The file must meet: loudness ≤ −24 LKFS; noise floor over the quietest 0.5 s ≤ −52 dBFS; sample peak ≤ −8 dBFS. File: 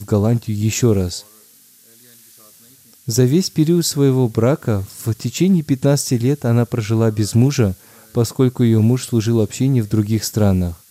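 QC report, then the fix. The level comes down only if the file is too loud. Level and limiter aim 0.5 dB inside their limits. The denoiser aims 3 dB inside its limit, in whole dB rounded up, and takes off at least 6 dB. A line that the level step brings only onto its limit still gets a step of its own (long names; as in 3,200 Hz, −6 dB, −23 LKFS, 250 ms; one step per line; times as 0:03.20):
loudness −17.0 LKFS: out of spec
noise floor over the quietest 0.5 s −49 dBFS: out of spec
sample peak −2.5 dBFS: out of spec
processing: level −7.5 dB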